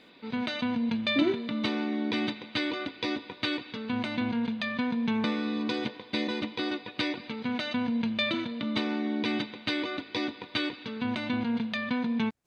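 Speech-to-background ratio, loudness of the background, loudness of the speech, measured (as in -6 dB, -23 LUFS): 0.5 dB, -31.0 LUFS, -30.5 LUFS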